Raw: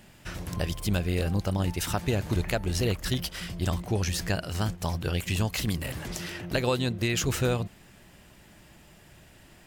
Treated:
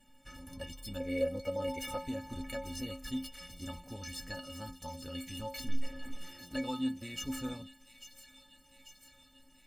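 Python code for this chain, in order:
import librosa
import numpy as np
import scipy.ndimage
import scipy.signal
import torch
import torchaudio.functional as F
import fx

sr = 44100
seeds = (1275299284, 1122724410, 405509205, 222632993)

y = fx.small_body(x, sr, hz=(510.0, 2200.0), ring_ms=30, db=16, at=(1.0, 1.98))
y = fx.lpc_vocoder(y, sr, seeds[0], excitation='pitch_kept', order=10, at=(5.66, 6.21))
y = fx.low_shelf(y, sr, hz=180.0, db=7.5)
y = fx.stiff_resonator(y, sr, f0_hz=260.0, decay_s=0.35, stiffness=0.03)
y = fx.echo_wet_highpass(y, sr, ms=843, feedback_pct=65, hz=2700.0, wet_db=-10.0)
y = y * 10.0 ** (3.0 / 20.0)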